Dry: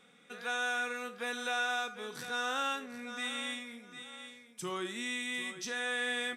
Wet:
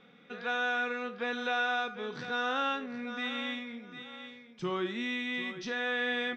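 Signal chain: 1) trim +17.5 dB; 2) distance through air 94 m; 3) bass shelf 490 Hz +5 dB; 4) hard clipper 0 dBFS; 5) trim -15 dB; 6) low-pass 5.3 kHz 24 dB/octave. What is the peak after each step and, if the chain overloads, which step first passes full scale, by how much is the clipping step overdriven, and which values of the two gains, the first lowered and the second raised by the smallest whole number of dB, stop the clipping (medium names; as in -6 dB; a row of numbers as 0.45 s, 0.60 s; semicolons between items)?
-4.0 dBFS, -5.5 dBFS, -5.0 dBFS, -5.0 dBFS, -20.0 dBFS, -20.0 dBFS; nothing clips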